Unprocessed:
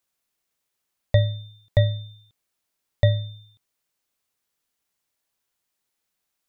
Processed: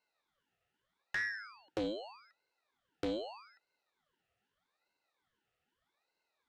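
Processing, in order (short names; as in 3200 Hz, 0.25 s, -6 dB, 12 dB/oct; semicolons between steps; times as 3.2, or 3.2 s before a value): in parallel at +0.5 dB: compressor, threshold -29 dBFS, peak gain reduction 15 dB; on the sum: vowel filter u; tube stage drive 48 dB, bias 0.8; ring modulator with a swept carrier 1100 Hz, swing 65%, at 0.81 Hz; gain +18 dB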